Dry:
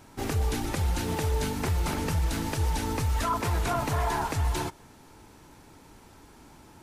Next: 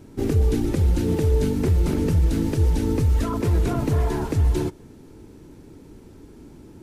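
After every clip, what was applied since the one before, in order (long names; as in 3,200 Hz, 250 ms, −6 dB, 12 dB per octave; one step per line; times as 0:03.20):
low shelf with overshoot 570 Hz +11 dB, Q 1.5
level −3 dB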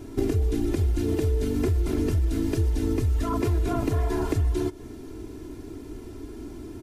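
comb filter 2.9 ms, depth 66%
downward compressor 5 to 1, threshold −26 dBFS, peak gain reduction 12.5 dB
level +4 dB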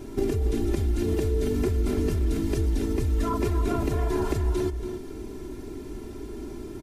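in parallel at −0.5 dB: brickwall limiter −22.5 dBFS, peak gain reduction 10 dB
on the sum: comb filter 5.1 ms, depth 34%
slap from a distant wall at 48 metres, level −8 dB
level −4.5 dB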